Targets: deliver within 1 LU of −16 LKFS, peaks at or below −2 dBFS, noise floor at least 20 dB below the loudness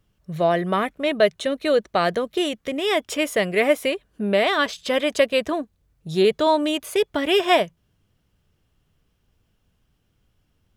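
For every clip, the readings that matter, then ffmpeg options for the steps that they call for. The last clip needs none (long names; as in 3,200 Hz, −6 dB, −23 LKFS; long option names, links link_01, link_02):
integrated loudness −21.5 LKFS; sample peak −5.5 dBFS; target loudness −16.0 LKFS
→ -af "volume=5.5dB,alimiter=limit=-2dB:level=0:latency=1"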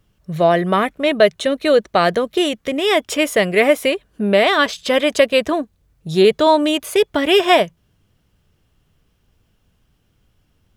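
integrated loudness −16.5 LKFS; sample peak −2.0 dBFS; background noise floor −63 dBFS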